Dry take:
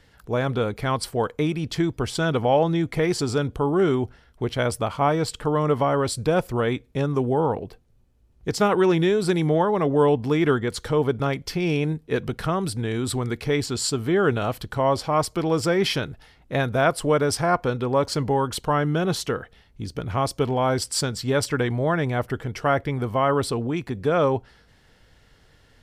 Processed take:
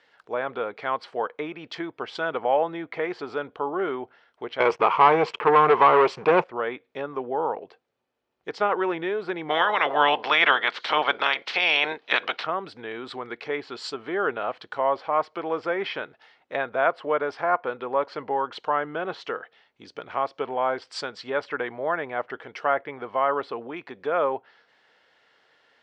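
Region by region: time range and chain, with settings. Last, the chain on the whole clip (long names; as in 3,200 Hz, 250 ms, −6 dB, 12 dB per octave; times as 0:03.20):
0:04.60–0:06.44: EQ curve with evenly spaced ripples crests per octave 0.76, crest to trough 11 dB + leveller curve on the samples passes 3
0:09.49–0:12.42: ceiling on every frequency bin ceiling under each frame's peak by 23 dB + parametric band 4,300 Hz +12.5 dB 1.8 octaves
whole clip: low-pass filter 3,600 Hz 12 dB per octave; treble cut that deepens with the level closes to 2,400 Hz, closed at −20.5 dBFS; high-pass filter 550 Hz 12 dB per octave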